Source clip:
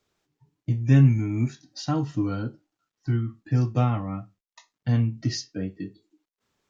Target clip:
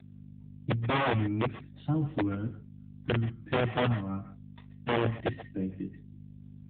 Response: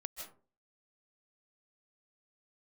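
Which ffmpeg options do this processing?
-filter_complex "[0:a]aeval=exprs='val(0)+0.0112*(sin(2*PI*50*n/s)+sin(2*PI*2*50*n/s)/2+sin(2*PI*3*50*n/s)/3+sin(2*PI*4*50*n/s)/4+sin(2*PI*5*50*n/s)/5)':channel_layout=same,highpass=frequency=41:poles=1,acrossover=split=370[link_01][link_02];[link_01]bandreject=frequency=87.9:width_type=h:width=4,bandreject=frequency=175.8:width_type=h:width=4,bandreject=frequency=263.7:width_type=h:width=4[link_03];[link_02]alimiter=level_in=4dB:limit=-24dB:level=0:latency=1:release=213,volume=-4dB[link_04];[link_03][link_04]amix=inputs=2:normalize=0,aeval=exprs='(mod(7.5*val(0)+1,2)-1)/7.5':channel_layout=same[link_05];[1:a]atrim=start_sample=2205,atrim=end_sample=6174[link_06];[link_05][link_06]afir=irnorm=-1:irlink=0,volume=2dB" -ar 8000 -c:a libopencore_amrnb -b:a 7950

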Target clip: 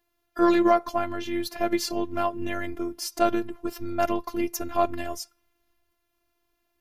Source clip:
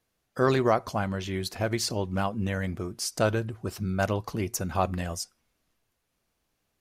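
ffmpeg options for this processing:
ffmpeg -i in.wav -af "highshelf=frequency=6000:gain=-11,aeval=exprs='0.299*(cos(1*acos(clip(val(0)/0.299,-1,1)))-cos(1*PI/2))+0.00237*(cos(8*acos(clip(val(0)/0.299,-1,1)))-cos(8*PI/2))':channel_layout=same,afftfilt=real='hypot(re,im)*cos(PI*b)':imag='0':win_size=512:overlap=0.75,aexciter=amount=3.4:drive=6:freq=11000,volume=6.5dB" out.wav

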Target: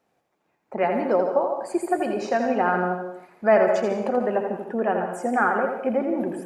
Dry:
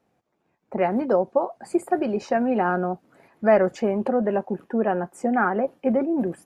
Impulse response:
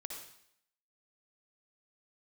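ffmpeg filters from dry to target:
-filter_complex "[0:a]lowshelf=frequency=320:gain=-9.5,asplit=2[link_01][link_02];[1:a]atrim=start_sample=2205,adelay=83[link_03];[link_02][link_03]afir=irnorm=-1:irlink=0,volume=-1.5dB[link_04];[link_01][link_04]amix=inputs=2:normalize=0,volume=1.5dB"

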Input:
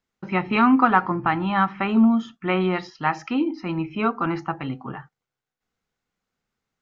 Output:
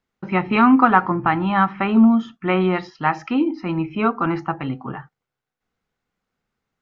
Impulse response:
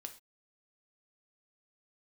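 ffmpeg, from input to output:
-af "highshelf=frequency=4800:gain=-9.5,volume=3.5dB"

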